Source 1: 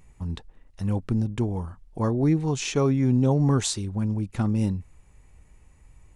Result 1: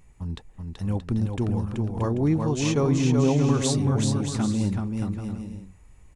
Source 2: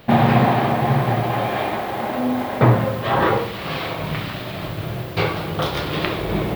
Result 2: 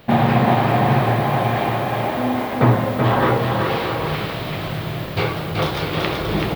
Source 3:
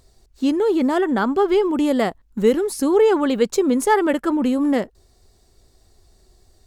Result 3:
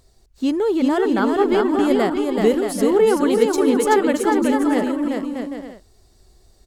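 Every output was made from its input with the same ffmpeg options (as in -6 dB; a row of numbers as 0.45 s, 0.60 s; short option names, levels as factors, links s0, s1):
-af "aecho=1:1:380|627|787.6|891.9|959.7:0.631|0.398|0.251|0.158|0.1,volume=0.891"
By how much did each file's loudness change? +0.5 LU, +1.0 LU, +0.5 LU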